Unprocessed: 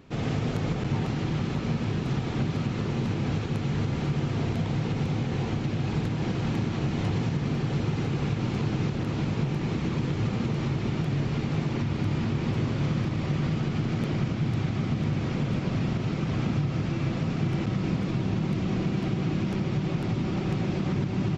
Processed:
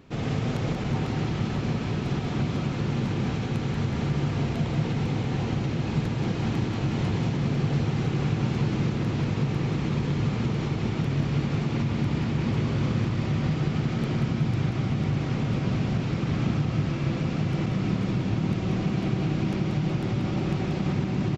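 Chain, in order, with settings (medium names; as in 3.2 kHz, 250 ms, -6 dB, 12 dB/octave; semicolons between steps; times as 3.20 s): feedback delay 184 ms, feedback 57%, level -6.5 dB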